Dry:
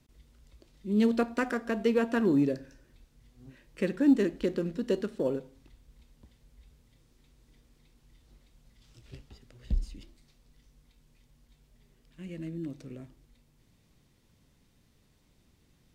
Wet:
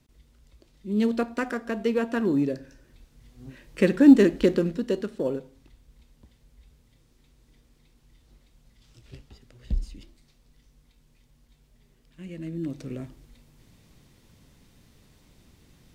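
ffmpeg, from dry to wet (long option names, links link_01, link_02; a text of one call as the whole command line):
ffmpeg -i in.wav -af "volume=16dB,afade=type=in:start_time=2.48:duration=1.34:silence=0.398107,afade=type=out:start_time=4.48:duration=0.41:silence=0.446684,afade=type=in:start_time=12.4:duration=0.58:silence=0.446684" out.wav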